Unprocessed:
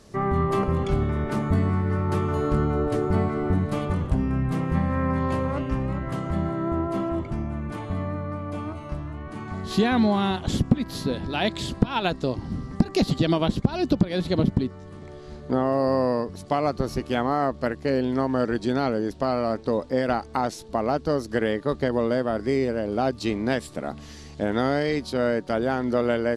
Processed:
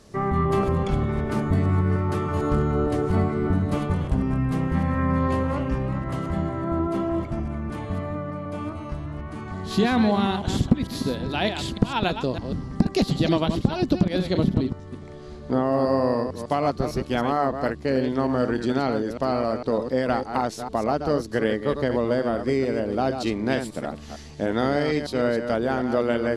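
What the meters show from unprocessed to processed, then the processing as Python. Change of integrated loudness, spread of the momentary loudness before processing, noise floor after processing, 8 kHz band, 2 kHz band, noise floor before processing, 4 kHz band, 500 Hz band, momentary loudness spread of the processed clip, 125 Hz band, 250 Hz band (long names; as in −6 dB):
+0.5 dB, 9 LU, −39 dBFS, +0.5 dB, +0.5 dB, −42 dBFS, +0.5 dB, +0.5 dB, 9 LU, +1.0 dB, +1.0 dB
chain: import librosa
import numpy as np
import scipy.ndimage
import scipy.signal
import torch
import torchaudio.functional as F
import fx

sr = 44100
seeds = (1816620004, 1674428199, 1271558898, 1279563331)

y = fx.reverse_delay(x, sr, ms=151, wet_db=-7.5)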